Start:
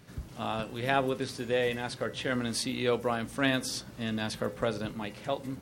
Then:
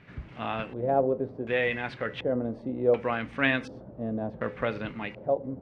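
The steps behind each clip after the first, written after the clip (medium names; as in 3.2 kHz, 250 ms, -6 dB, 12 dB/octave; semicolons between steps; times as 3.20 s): LFO low-pass square 0.68 Hz 600–2300 Hz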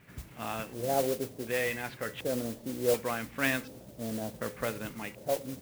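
modulation noise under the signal 11 dB; trim -4.5 dB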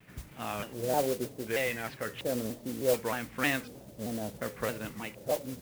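vibrato with a chosen wave saw down 3.2 Hz, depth 160 cents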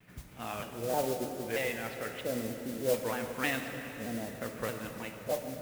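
plate-style reverb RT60 3.9 s, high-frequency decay 0.85×, DRR 5 dB; trim -3 dB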